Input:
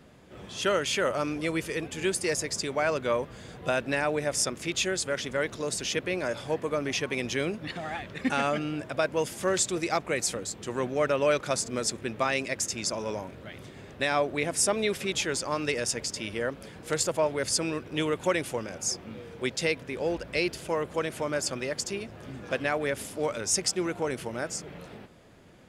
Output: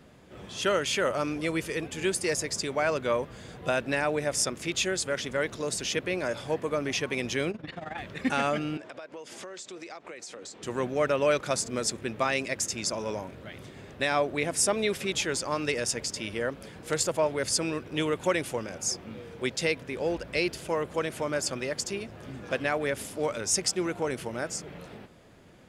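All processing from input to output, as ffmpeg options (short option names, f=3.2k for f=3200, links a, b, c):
-filter_complex "[0:a]asettb=1/sr,asplit=3[a][b][c];[a]atrim=end=7.514[d];[b]atrim=start=7.51:end=7.98,asetpts=PTS-STARTPTS,afade=t=in:d=0.004:c=qsin,afade=t=out:st=0.466:d=0.004:c=qsin,aemphasis=mode=reproduction:type=50fm,tremolo=f=22:d=0.788[e];[c]atrim=start=7.976[f];[d][e]acrossfade=d=0.004:c1=hsin:c2=qsin[g];[g][f]acrossfade=d=0.004:c1=qsin:c2=hsin,asettb=1/sr,asplit=3[h][i][j];[h]atrim=end=8.774[k];[i]atrim=start=8.77:end=10.63,asetpts=PTS-STARTPTS,afade=t=in:d=0.004:c=qsin,afade=t=out:st=1.856:d=0.004:c=qsin,acrossover=split=240 8000:gain=0.158 1 0.0891[l][m][n];[l][m][n]amix=inputs=3:normalize=0,acompressor=threshold=-38dB:ratio=12:attack=3.2:release=140:knee=1:detection=peak[o];[j]atrim=start=10.626[p];[k][o]acrossfade=d=0.004:c1=hsin:c2=qsin[q];[q][p]acrossfade=d=0.004:c1=qsin:c2=hsin"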